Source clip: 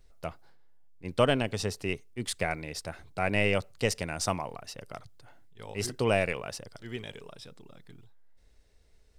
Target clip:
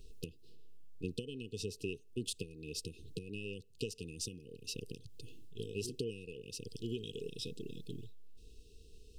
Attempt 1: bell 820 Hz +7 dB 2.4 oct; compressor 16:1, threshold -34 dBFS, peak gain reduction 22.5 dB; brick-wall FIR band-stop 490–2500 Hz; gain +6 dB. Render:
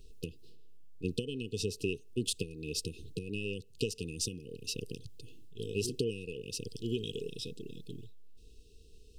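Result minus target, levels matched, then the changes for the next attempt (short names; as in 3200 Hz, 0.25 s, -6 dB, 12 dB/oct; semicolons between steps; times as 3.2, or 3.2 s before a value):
compressor: peak gain reduction -6 dB
change: compressor 16:1, threshold -40.5 dBFS, peak gain reduction 28.5 dB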